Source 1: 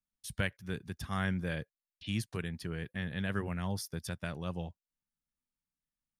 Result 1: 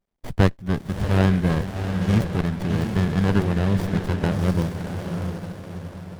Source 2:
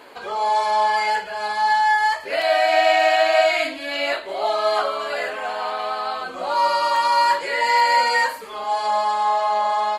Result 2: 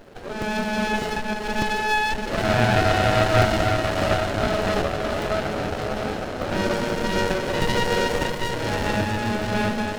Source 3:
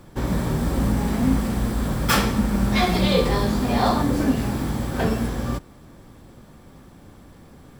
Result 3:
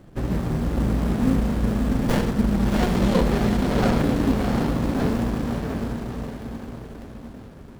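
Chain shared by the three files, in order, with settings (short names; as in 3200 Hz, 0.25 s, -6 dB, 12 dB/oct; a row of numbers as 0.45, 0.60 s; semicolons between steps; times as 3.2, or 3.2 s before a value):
diffused feedback echo 0.691 s, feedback 47%, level -4 dB; crackling interface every 0.60 s, samples 64, zero, from 0.42; running maximum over 33 samples; match loudness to -23 LUFS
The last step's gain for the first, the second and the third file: +13.5, +0.5, -0.5 dB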